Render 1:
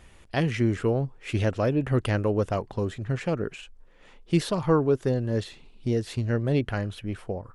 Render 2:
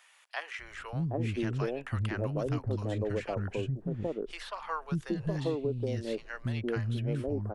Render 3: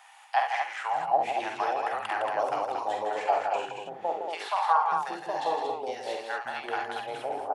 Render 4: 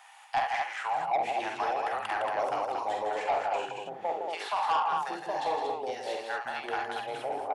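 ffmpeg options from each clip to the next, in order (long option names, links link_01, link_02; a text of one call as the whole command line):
ffmpeg -i in.wav -filter_complex "[0:a]acrossover=split=240|810[link_01][link_02][link_03];[link_01]adelay=590[link_04];[link_02]adelay=770[link_05];[link_04][link_05][link_03]amix=inputs=3:normalize=0,acrossover=split=2000|4000[link_06][link_07][link_08];[link_06]acompressor=threshold=-27dB:ratio=4[link_09];[link_07]acompressor=threshold=-46dB:ratio=4[link_10];[link_08]acompressor=threshold=-57dB:ratio=4[link_11];[link_09][link_10][link_11]amix=inputs=3:normalize=0,volume=-1.5dB" out.wav
ffmpeg -i in.wav -af "highpass=frequency=800:width_type=q:width=10,aecho=1:1:47|70|161|230:0.501|0.355|0.447|0.531,volume=2.5dB" out.wav
ffmpeg -i in.wav -af "asoftclip=type=tanh:threshold=-21.5dB" out.wav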